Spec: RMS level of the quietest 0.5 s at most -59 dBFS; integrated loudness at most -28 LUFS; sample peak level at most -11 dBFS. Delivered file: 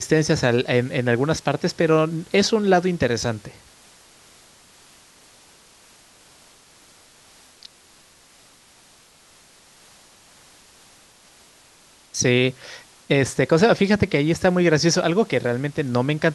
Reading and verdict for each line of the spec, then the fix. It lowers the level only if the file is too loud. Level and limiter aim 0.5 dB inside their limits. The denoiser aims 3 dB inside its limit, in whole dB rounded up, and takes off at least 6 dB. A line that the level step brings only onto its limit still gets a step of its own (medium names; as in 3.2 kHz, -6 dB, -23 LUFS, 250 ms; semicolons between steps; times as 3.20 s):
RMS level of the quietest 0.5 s -53 dBFS: fail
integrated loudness -20.0 LUFS: fail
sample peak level -6.0 dBFS: fail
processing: trim -8.5 dB